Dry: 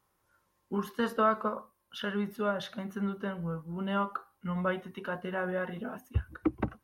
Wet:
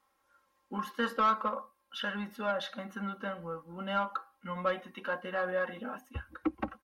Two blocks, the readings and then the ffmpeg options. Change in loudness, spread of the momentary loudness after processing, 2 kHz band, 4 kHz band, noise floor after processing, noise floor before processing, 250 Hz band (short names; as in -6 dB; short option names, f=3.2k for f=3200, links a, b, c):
-1.5 dB, 13 LU, +1.0 dB, +2.0 dB, -75 dBFS, -76 dBFS, -5.0 dB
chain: -filter_complex "[0:a]asplit=2[a][b];[b]highpass=f=720:p=1,volume=12dB,asoftclip=type=tanh:threshold=-15.5dB[c];[a][c]amix=inputs=2:normalize=0,lowpass=f=4.1k:p=1,volume=-6dB,aecho=1:1:3.7:0.72,volume=-5.5dB"